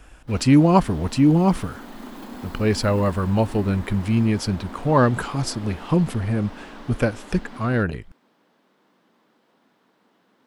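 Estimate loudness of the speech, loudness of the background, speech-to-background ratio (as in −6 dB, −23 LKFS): −21.5 LKFS, −40.0 LKFS, 18.5 dB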